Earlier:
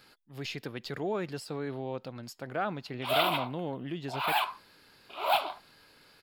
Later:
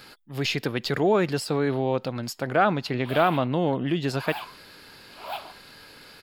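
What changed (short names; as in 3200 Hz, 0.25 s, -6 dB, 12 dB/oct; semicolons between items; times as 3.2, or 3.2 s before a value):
speech +11.5 dB; background -8.0 dB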